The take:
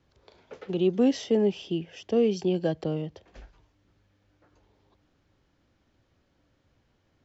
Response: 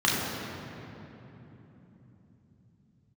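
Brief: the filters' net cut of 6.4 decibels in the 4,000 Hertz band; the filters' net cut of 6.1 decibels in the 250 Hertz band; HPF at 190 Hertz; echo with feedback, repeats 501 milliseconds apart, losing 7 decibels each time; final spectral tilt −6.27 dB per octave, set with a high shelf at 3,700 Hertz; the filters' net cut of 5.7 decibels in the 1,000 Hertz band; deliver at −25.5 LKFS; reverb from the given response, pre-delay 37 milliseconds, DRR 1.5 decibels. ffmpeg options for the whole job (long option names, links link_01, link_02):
-filter_complex "[0:a]highpass=190,equalizer=frequency=250:width_type=o:gain=-5.5,equalizer=frequency=1000:width_type=o:gain=-8,highshelf=frequency=3700:gain=-8,equalizer=frequency=4000:width_type=o:gain=-3.5,aecho=1:1:501|1002|1503|2004|2505:0.447|0.201|0.0905|0.0407|0.0183,asplit=2[link_01][link_02];[1:a]atrim=start_sample=2205,adelay=37[link_03];[link_02][link_03]afir=irnorm=-1:irlink=0,volume=-17.5dB[link_04];[link_01][link_04]amix=inputs=2:normalize=0,volume=2.5dB"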